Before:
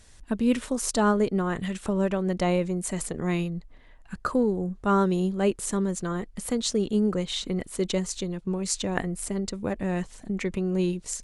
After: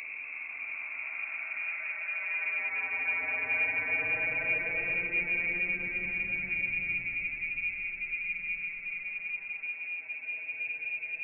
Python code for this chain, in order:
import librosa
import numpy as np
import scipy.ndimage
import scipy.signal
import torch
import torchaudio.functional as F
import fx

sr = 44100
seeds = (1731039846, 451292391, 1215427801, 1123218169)

y = fx.echo_heads(x, sr, ms=221, heads='first and second', feedback_pct=53, wet_db=-21.0)
y = fx.paulstretch(y, sr, seeds[0], factor=29.0, window_s=0.1, from_s=3.17)
y = fx.freq_invert(y, sr, carrier_hz=2600)
y = F.gain(torch.from_numpy(y), -6.5).numpy()